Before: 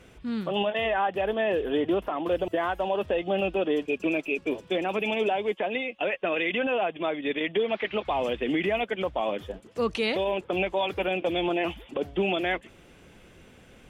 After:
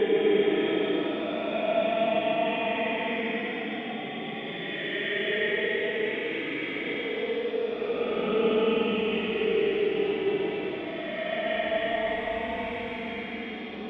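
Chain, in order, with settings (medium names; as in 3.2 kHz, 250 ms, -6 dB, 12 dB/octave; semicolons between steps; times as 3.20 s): time reversed locally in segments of 105 ms; two-band feedback delay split 1.4 kHz, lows 279 ms, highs 182 ms, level -3 dB; Paulstretch 35×, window 0.05 s, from 7.64 s; trim -2 dB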